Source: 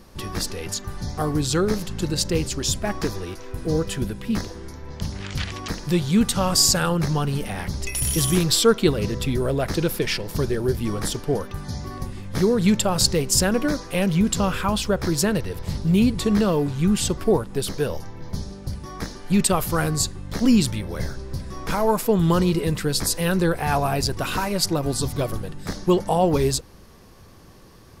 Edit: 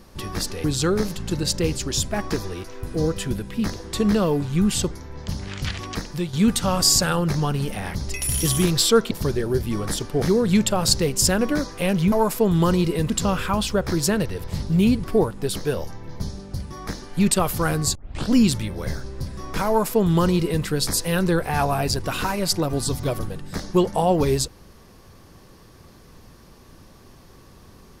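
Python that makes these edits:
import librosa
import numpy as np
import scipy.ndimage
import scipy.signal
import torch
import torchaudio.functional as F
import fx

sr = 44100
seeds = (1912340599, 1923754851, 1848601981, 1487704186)

y = fx.edit(x, sr, fx.cut(start_s=0.64, length_s=0.71),
    fx.fade_out_to(start_s=5.71, length_s=0.35, floor_db=-10.0),
    fx.cut(start_s=8.84, length_s=1.41),
    fx.cut(start_s=11.36, length_s=0.99),
    fx.move(start_s=16.19, length_s=0.98, to_s=4.64),
    fx.tape_start(start_s=20.08, length_s=0.36),
    fx.duplicate(start_s=21.8, length_s=0.98, to_s=14.25), tone=tone)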